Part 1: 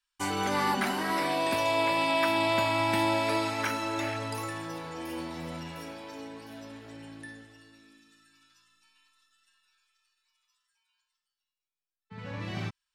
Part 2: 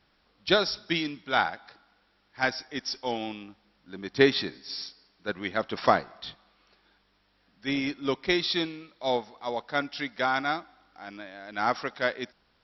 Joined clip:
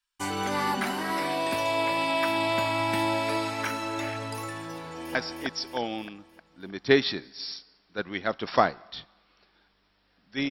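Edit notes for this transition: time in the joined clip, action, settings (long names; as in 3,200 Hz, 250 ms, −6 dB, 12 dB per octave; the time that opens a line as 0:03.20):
part 1
0:04.81–0:05.15: delay throw 310 ms, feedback 50%, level −1.5 dB
0:05.15: continue with part 2 from 0:02.45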